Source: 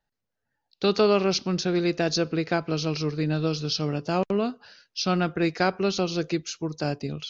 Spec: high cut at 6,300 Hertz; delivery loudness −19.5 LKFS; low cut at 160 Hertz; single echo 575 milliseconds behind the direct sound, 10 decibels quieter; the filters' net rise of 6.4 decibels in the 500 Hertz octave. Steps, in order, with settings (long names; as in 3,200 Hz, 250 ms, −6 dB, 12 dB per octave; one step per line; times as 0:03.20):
high-pass filter 160 Hz
low-pass filter 6,300 Hz
parametric band 500 Hz +8.5 dB
single-tap delay 575 ms −10 dB
level +2.5 dB